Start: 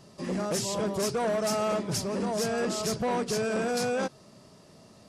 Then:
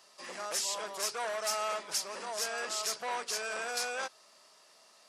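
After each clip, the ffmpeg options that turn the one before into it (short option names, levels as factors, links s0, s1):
-af "highpass=1000"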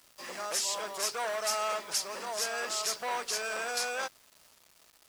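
-af "acrusher=bits=8:mix=0:aa=0.000001,volume=1.26"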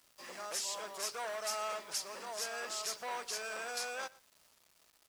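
-af "aecho=1:1:117:0.0794,volume=0.473"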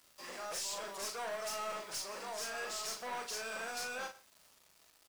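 -filter_complex "[0:a]aeval=exprs='(tanh(79.4*val(0)+0.1)-tanh(0.1))/79.4':c=same,asplit=2[s0][s1];[s1]adelay=40,volume=0.531[s2];[s0][s2]amix=inputs=2:normalize=0,volume=1.19"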